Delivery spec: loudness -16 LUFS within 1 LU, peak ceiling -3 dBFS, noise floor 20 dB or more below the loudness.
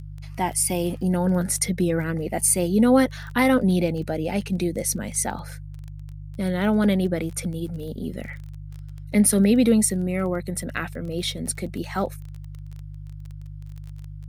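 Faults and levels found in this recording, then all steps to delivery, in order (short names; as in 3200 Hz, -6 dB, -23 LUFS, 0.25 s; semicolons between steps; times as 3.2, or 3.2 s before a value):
ticks 19/s; hum 50 Hz; harmonics up to 150 Hz; hum level -35 dBFS; loudness -23.0 LUFS; peak -7.5 dBFS; loudness target -16.0 LUFS
-> de-click; de-hum 50 Hz, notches 3; gain +7 dB; limiter -3 dBFS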